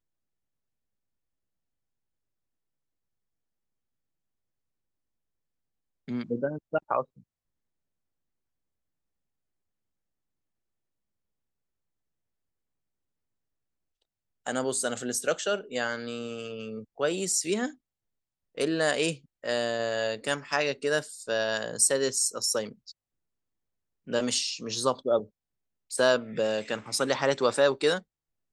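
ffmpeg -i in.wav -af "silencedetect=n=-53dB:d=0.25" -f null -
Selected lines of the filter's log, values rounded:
silence_start: 0.00
silence_end: 6.08 | silence_duration: 6.08
silence_start: 7.22
silence_end: 14.46 | silence_duration: 7.24
silence_start: 17.75
silence_end: 18.55 | silence_duration: 0.80
silence_start: 22.92
silence_end: 24.07 | silence_duration: 1.15
silence_start: 25.27
silence_end: 25.90 | silence_duration: 0.63
silence_start: 28.02
silence_end: 28.52 | silence_duration: 0.50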